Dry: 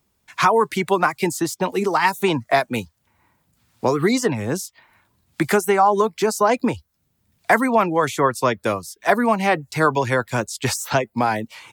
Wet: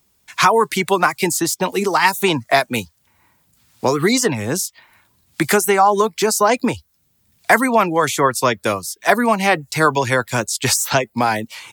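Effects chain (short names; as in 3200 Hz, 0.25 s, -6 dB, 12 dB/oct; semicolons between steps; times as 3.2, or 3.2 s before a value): high shelf 2500 Hz +8 dB; gain +1.5 dB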